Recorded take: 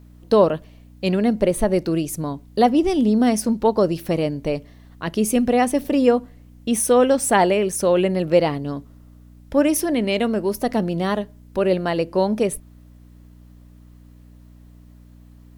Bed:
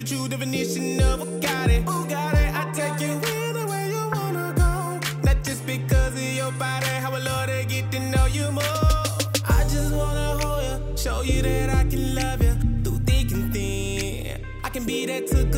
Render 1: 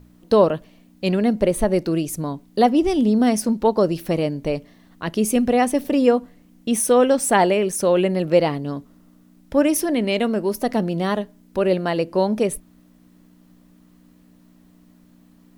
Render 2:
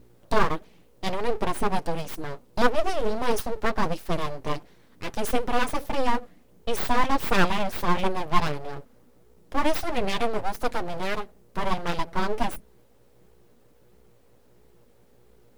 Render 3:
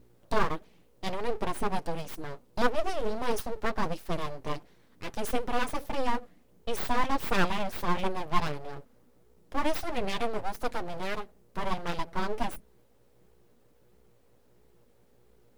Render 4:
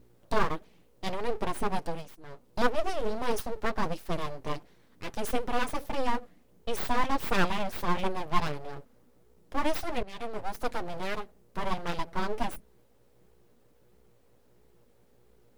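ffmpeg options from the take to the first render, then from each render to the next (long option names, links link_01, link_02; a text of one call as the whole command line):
ffmpeg -i in.wav -af "bandreject=frequency=60:width_type=h:width=4,bandreject=frequency=120:width_type=h:width=4" out.wav
ffmpeg -i in.wav -af "flanger=delay=4:depth=6.1:regen=11:speed=1.5:shape=triangular,aeval=exprs='abs(val(0))':channel_layout=same" out.wav
ffmpeg -i in.wav -af "volume=-5dB" out.wav
ffmpeg -i in.wav -filter_complex "[0:a]asplit=4[link_01][link_02][link_03][link_04];[link_01]atrim=end=2.15,asetpts=PTS-STARTPTS,afade=type=out:start_time=1.87:duration=0.28:silence=0.211349[link_05];[link_02]atrim=start=2.15:end=2.2,asetpts=PTS-STARTPTS,volume=-13.5dB[link_06];[link_03]atrim=start=2.2:end=10.03,asetpts=PTS-STARTPTS,afade=type=in:duration=0.28:silence=0.211349,afade=type=out:start_time=7.826:duration=0.004:curve=hsin:silence=0.112202[link_07];[link_04]atrim=start=10.03,asetpts=PTS-STARTPTS,afade=type=in:duration=0.53:silence=0.112202[link_08];[link_05][link_06][link_07][link_08]concat=n=4:v=0:a=1" out.wav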